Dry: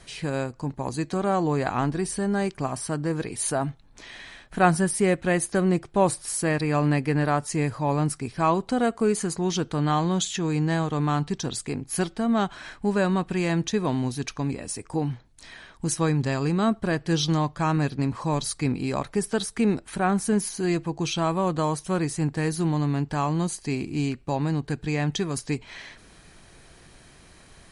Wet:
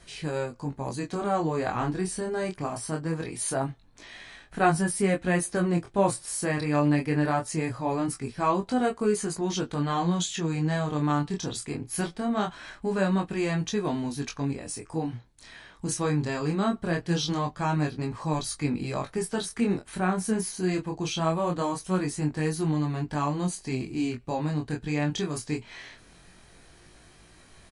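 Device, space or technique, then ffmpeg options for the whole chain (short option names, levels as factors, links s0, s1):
double-tracked vocal: -filter_complex "[0:a]asplit=2[s0][s1];[s1]adelay=17,volume=0.282[s2];[s0][s2]amix=inputs=2:normalize=0,flanger=delay=19.5:depth=7.8:speed=0.22"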